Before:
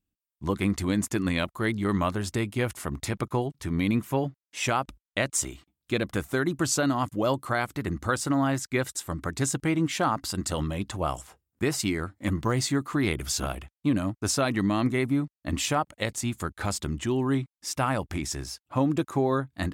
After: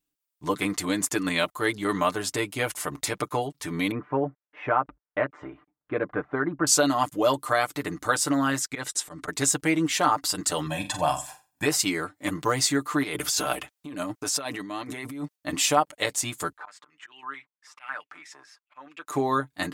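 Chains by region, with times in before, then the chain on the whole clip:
3.91–6.67 s: low-pass 1.7 kHz 24 dB/octave + de-esser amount 80%
8.67–9.28 s: low-pass 9.8 kHz + slow attack 113 ms
10.66–11.66 s: comb 1.2 ms, depth 80% + flutter echo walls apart 7.7 m, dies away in 0.3 s
13.03–15.36 s: bass shelf 100 Hz -8 dB + compressor with a negative ratio -33 dBFS
16.57–19.07 s: slow attack 143 ms + step-sequenced band-pass 9.1 Hz 1–2.6 kHz
whole clip: tone controls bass -13 dB, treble +3 dB; comb 6.7 ms, depth 67%; trim +2.5 dB

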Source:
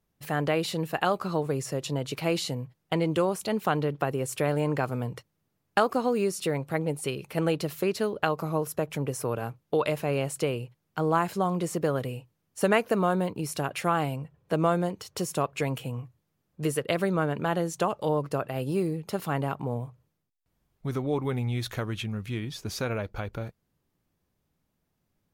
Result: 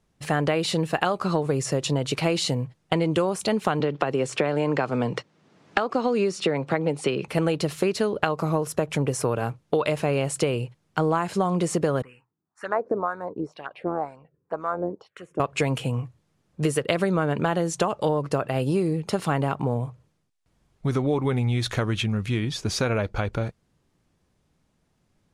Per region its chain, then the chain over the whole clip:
3.80–7.28 s: band-pass 170–5300 Hz + three bands compressed up and down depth 70%
12.02–15.40 s: wah-wah 2 Hz 340–1700 Hz, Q 2 + touch-sensitive phaser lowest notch 490 Hz, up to 3 kHz, full sweep at -32.5 dBFS + AM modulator 84 Hz, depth 20%
whole clip: low-pass 10 kHz 24 dB/octave; compression, threshold -27 dBFS; trim +8 dB

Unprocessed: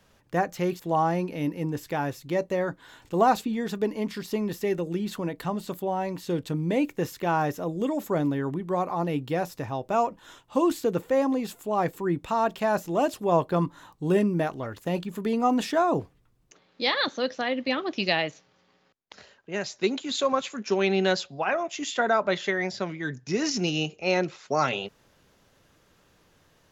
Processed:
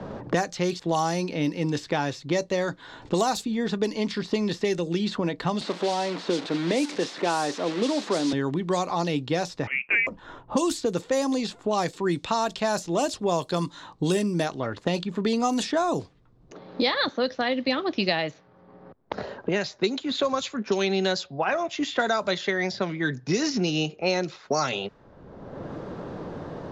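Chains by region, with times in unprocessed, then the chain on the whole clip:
5.61–8.33 s: one-bit delta coder 64 kbps, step -31.5 dBFS + high-pass 220 Hz 24 dB/octave + treble shelf 5.7 kHz -11.5 dB
9.67–10.07 s: high-pass 340 Hz + frequency inversion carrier 3 kHz
whole clip: level-controlled noise filter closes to 760 Hz, open at -19 dBFS; high-order bell 6 kHz +10 dB; three bands compressed up and down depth 100%

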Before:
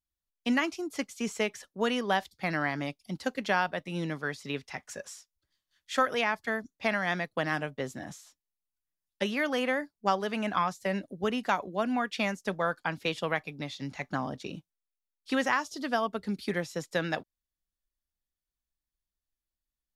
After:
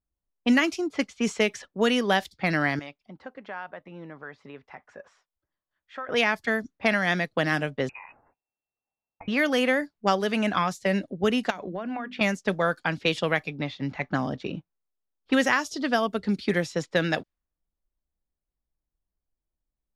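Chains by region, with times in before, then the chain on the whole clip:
2.79–6.09 s: compression 2.5:1, threshold -41 dBFS + bass shelf 410 Hz -11.5 dB
7.89–9.28 s: peaking EQ 1.9 kHz +7 dB 0.22 oct + compression 12:1, threshold -43 dBFS + frequency inversion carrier 2.7 kHz
11.50–12.21 s: hum notches 50/100/150/200/250 Hz + compression 12:1, threshold -34 dBFS
whole clip: level-controlled noise filter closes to 810 Hz, open at -26.5 dBFS; dynamic bell 970 Hz, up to -6 dB, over -41 dBFS, Q 1.5; trim +7 dB

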